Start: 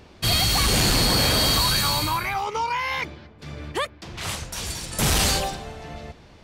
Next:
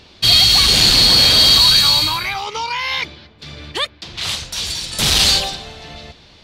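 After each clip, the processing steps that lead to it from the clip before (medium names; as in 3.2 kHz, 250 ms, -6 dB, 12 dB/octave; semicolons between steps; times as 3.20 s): peaking EQ 3.9 kHz +14 dB 1.3 oct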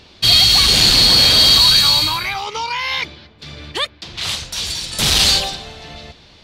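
no audible change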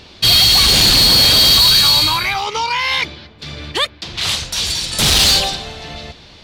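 saturation -11 dBFS, distortion -12 dB; trim +4.5 dB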